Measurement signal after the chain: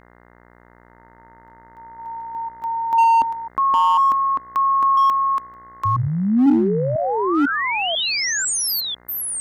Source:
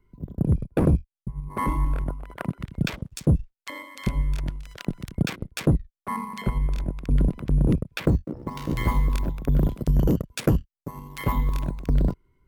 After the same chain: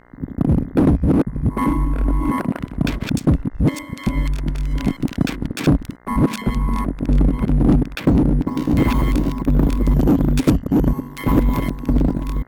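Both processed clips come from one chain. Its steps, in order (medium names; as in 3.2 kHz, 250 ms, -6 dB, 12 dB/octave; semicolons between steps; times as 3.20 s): chunks repeated in reverse 497 ms, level -2 dB; peaking EQ 270 Hz +12 dB 0.68 oct; mains buzz 60 Hz, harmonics 35, -54 dBFS -2 dB/octave; in parallel at -6 dB: wavefolder -16 dBFS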